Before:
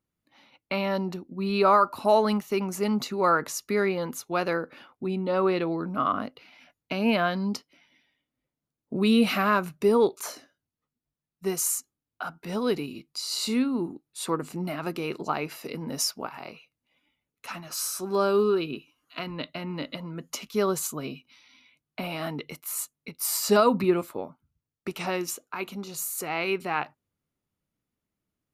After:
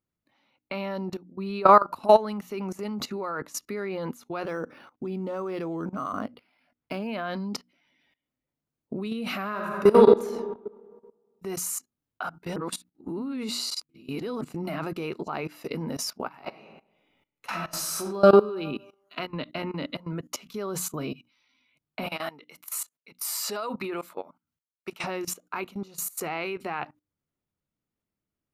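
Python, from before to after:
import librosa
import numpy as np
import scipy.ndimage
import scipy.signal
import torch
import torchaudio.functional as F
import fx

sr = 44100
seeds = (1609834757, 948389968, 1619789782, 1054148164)

y = fx.resample_linear(x, sr, factor=6, at=(4.45, 7.07))
y = fx.reverb_throw(y, sr, start_s=9.48, length_s=0.72, rt60_s=1.5, drr_db=0.5)
y = fx.reverb_throw(y, sr, start_s=16.37, length_s=1.89, rt60_s=0.95, drr_db=-0.5)
y = fx.highpass(y, sr, hz=850.0, slope=6, at=(22.06, 25.04))
y = fx.edit(y, sr, fx.reverse_span(start_s=12.56, length_s=1.85), tone=tone)
y = fx.peak_eq(y, sr, hz=10000.0, db=-5.0, octaves=2.7)
y = fx.hum_notches(y, sr, base_hz=60, count=5)
y = fx.level_steps(y, sr, step_db=19)
y = y * librosa.db_to_amplitude(6.5)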